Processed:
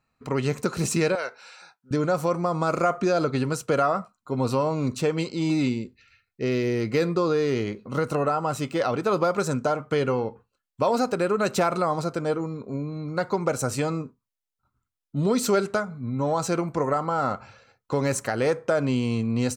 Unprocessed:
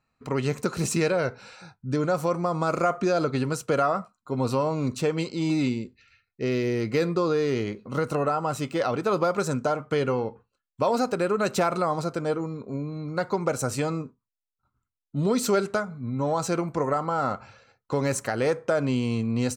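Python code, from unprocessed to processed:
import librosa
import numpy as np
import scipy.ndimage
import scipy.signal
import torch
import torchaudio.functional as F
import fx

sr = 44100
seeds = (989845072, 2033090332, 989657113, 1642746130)

y = fx.bessel_highpass(x, sr, hz=860.0, order=2, at=(1.15, 1.91))
y = F.gain(torch.from_numpy(y), 1.0).numpy()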